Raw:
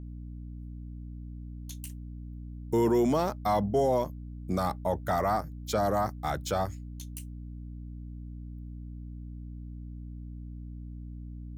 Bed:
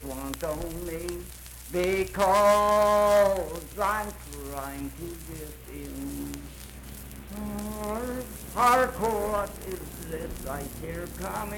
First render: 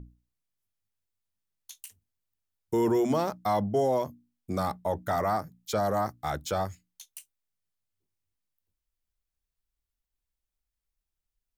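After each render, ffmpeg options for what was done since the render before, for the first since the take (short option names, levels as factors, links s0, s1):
-af "bandreject=f=60:t=h:w=6,bandreject=f=120:t=h:w=6,bandreject=f=180:t=h:w=6,bandreject=f=240:t=h:w=6,bandreject=f=300:t=h:w=6"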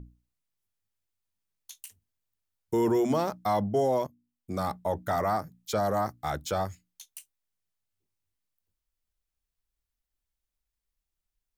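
-filter_complex "[0:a]asplit=2[s0][s1];[s0]atrim=end=4.07,asetpts=PTS-STARTPTS,afade=t=out:st=4.066:d=0.004:c=hsin:silence=0.188365[s2];[s1]atrim=start=4.07,asetpts=PTS-STARTPTS,afade=t=in:d=0.66:silence=0.188365[s3];[s2][s3]concat=n=2:v=0:a=1"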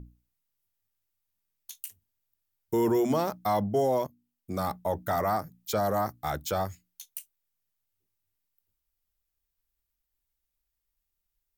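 -af "equalizer=f=16000:w=1:g=12"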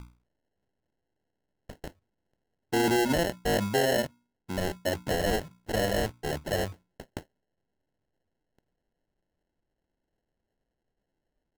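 -af "acrusher=samples=37:mix=1:aa=0.000001"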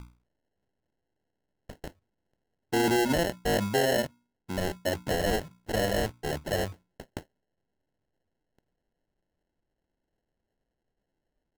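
-af anull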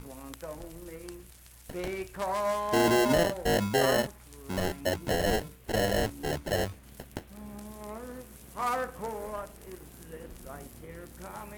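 -filter_complex "[1:a]volume=0.335[s0];[0:a][s0]amix=inputs=2:normalize=0"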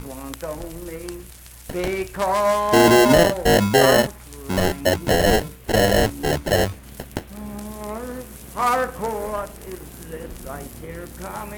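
-af "volume=3.35"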